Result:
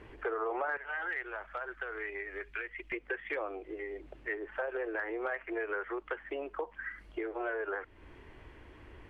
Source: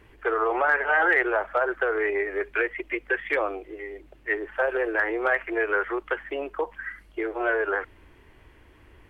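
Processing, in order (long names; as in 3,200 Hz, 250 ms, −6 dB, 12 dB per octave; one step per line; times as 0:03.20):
parametric band 500 Hz +5 dB 2.7 octaves, from 0:00.77 −12 dB, from 0:02.92 +2 dB
downward compressor 2.5 to 1, threshold −39 dBFS, peak gain reduction 15.5 dB
high-frequency loss of the air 51 metres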